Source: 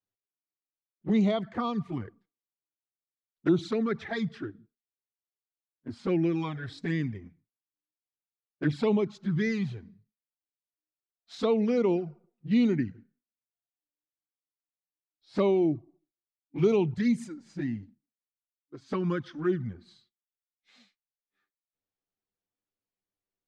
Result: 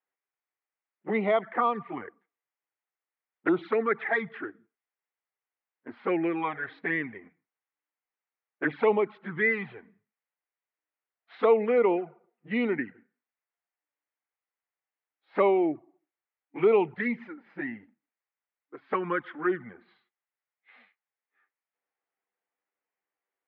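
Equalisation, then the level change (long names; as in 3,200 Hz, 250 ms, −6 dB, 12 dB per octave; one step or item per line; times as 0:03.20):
high-frequency loss of the air 120 metres
loudspeaker in its box 300–2,900 Hz, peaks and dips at 460 Hz +4 dB, 800 Hz +4 dB, 2,000 Hz +5 dB
parametric band 1,400 Hz +10.5 dB 2.7 octaves
−2.0 dB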